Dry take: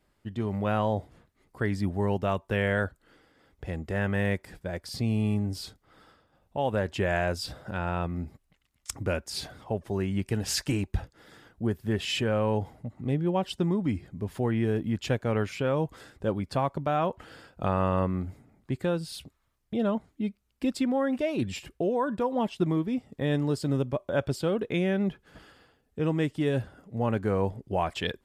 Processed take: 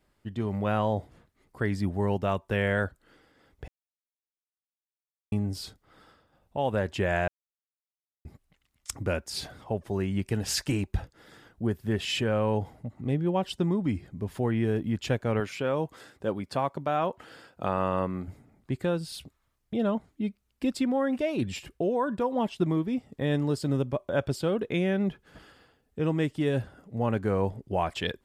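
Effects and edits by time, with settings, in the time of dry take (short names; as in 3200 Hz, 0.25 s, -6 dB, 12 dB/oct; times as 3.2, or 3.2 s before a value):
3.68–5.32 mute
7.28–8.25 mute
15.4–18.28 HPF 200 Hz 6 dB/oct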